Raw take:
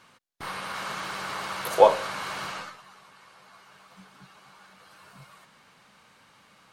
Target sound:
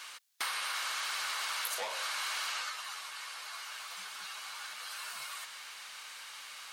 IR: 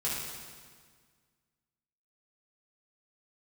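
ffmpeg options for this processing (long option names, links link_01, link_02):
-filter_complex "[0:a]asplit=2[link_01][link_02];[link_02]highpass=frequency=720:poles=1,volume=23dB,asoftclip=type=tanh:threshold=-2dB[link_03];[link_01][link_03]amix=inputs=2:normalize=0,lowpass=frequency=3200:poles=1,volume=-6dB,aderivative,acompressor=threshold=-39dB:ratio=20,volume=6.5dB"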